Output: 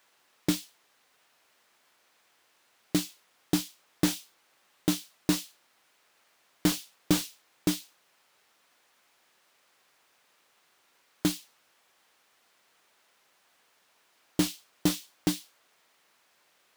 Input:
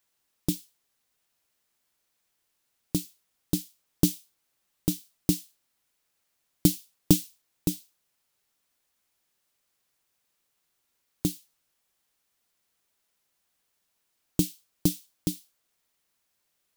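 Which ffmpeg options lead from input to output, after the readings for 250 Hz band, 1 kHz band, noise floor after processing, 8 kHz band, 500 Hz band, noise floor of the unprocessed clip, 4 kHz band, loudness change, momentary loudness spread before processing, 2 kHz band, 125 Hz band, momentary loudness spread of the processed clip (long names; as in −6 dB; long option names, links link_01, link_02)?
−0.5 dB, +9.5 dB, −68 dBFS, −1.0 dB, +1.0 dB, −77 dBFS, +4.0 dB, −1.5 dB, 16 LU, +12.0 dB, −4.5 dB, 9 LU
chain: -filter_complex "[0:a]asplit=2[link_01][link_02];[link_02]highpass=frequency=720:poles=1,volume=32dB,asoftclip=type=tanh:threshold=-2.5dB[link_03];[link_01][link_03]amix=inputs=2:normalize=0,lowpass=frequency=1700:poles=1,volume=-6dB,volume=-6.5dB"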